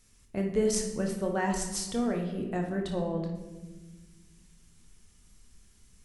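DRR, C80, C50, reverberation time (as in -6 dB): 1.5 dB, 8.0 dB, 5.0 dB, 1.3 s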